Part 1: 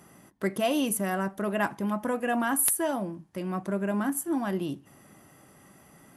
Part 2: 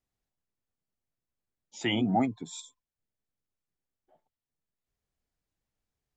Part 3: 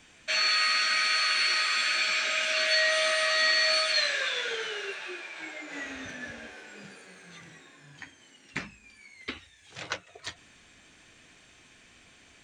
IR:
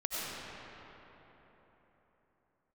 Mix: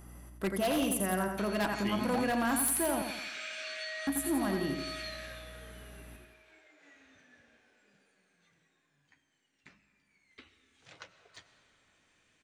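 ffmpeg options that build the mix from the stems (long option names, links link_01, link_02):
-filter_complex "[0:a]aeval=exprs='val(0)+0.00447*(sin(2*PI*60*n/s)+sin(2*PI*2*60*n/s)/2+sin(2*PI*3*60*n/s)/3+sin(2*PI*4*60*n/s)/4+sin(2*PI*5*60*n/s)/5)':channel_layout=same,volume=-3.5dB,asplit=3[link_01][link_02][link_03];[link_01]atrim=end=3.02,asetpts=PTS-STARTPTS,afade=type=out:start_time=3.016:duration=0.004:curve=hsin[link_04];[link_02]atrim=start=3.02:end=4.07,asetpts=PTS-STARTPTS,volume=0[link_05];[link_03]atrim=start=4.07,asetpts=PTS-STARTPTS,afade=type=in:duration=0.004:curve=hsin[link_06];[link_04][link_05][link_06]concat=n=3:v=0:a=1,asplit=3[link_07][link_08][link_09];[link_08]volume=-6dB[link_10];[1:a]volume=-9.5dB[link_11];[2:a]acompressor=threshold=-28dB:ratio=10,adelay=1100,volume=-3.5dB,afade=type=out:start_time=4.92:duration=0.56:silence=0.237137,afade=type=in:start_time=10.08:duration=0.59:silence=0.421697,asplit=2[link_12][link_13];[link_13]volume=-14.5dB[link_14];[link_09]apad=whole_len=596931[link_15];[link_12][link_15]sidechaincompress=threshold=-42dB:ratio=8:attack=16:release=125[link_16];[3:a]atrim=start_sample=2205[link_17];[link_14][link_17]afir=irnorm=-1:irlink=0[link_18];[link_10]aecho=0:1:86|172|258|344|430|516|602:1|0.47|0.221|0.104|0.0488|0.0229|0.0108[link_19];[link_07][link_11][link_16][link_18][link_19]amix=inputs=5:normalize=0,acrossover=split=10000[link_20][link_21];[link_21]acompressor=threshold=-41dB:ratio=4:attack=1:release=60[link_22];[link_20][link_22]amix=inputs=2:normalize=0,aexciter=amount=1:drive=5.2:freq=9900,aeval=exprs='0.0668*(abs(mod(val(0)/0.0668+3,4)-2)-1)':channel_layout=same"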